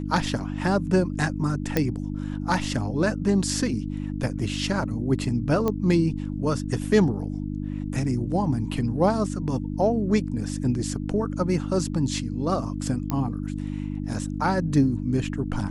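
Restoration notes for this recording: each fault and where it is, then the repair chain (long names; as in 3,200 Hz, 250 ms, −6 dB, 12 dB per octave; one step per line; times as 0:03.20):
mains hum 50 Hz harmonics 6 −30 dBFS
0:01.77: click −8 dBFS
0:05.68: click −13 dBFS
0:13.10: click −13 dBFS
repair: click removal
hum removal 50 Hz, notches 6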